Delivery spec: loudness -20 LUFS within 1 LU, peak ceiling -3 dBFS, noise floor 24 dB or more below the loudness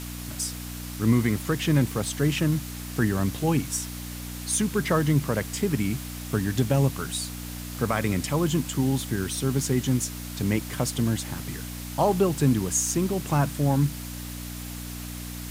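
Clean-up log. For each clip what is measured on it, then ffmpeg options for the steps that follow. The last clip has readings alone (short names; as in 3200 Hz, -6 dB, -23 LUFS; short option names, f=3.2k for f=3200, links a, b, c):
hum 60 Hz; harmonics up to 300 Hz; hum level -35 dBFS; noise floor -36 dBFS; noise floor target -51 dBFS; loudness -26.5 LUFS; peak -10.0 dBFS; loudness target -20.0 LUFS
-> -af "bandreject=f=60:t=h:w=4,bandreject=f=120:t=h:w=4,bandreject=f=180:t=h:w=4,bandreject=f=240:t=h:w=4,bandreject=f=300:t=h:w=4"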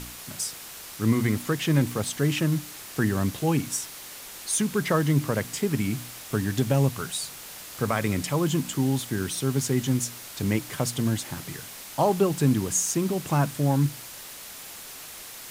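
hum none; noise floor -42 dBFS; noise floor target -50 dBFS
-> -af "afftdn=nr=8:nf=-42"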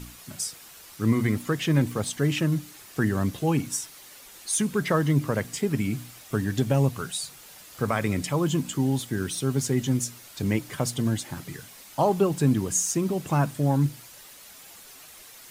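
noise floor -48 dBFS; noise floor target -51 dBFS
-> -af "afftdn=nr=6:nf=-48"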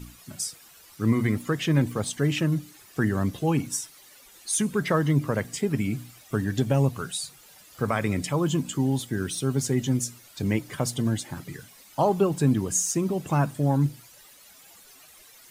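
noise floor -52 dBFS; loudness -26.0 LUFS; peak -10.5 dBFS; loudness target -20.0 LUFS
-> -af "volume=6dB"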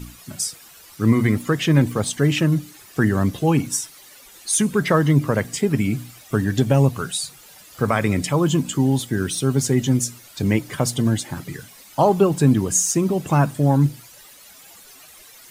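loudness -20.0 LUFS; peak -4.5 dBFS; noise floor -46 dBFS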